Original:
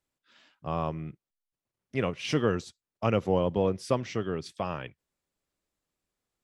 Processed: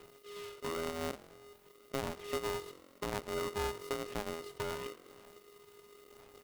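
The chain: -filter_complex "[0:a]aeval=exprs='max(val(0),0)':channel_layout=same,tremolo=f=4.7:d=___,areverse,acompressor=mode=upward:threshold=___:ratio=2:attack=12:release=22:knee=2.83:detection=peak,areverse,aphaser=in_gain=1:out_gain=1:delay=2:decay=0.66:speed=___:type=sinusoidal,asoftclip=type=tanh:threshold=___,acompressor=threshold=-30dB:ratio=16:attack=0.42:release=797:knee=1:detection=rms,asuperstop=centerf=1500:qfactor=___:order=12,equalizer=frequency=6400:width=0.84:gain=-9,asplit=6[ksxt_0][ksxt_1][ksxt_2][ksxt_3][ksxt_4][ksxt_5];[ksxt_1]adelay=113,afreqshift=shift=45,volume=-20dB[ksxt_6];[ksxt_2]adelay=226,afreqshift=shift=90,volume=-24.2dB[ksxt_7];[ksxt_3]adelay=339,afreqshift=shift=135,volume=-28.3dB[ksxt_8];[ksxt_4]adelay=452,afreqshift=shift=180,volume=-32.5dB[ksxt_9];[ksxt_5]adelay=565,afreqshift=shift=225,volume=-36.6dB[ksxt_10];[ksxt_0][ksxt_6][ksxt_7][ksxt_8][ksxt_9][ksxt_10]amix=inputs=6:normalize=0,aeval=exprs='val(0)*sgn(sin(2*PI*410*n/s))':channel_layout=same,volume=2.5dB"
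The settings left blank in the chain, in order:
0.36, -43dB, 0.96, -10.5dB, 1.6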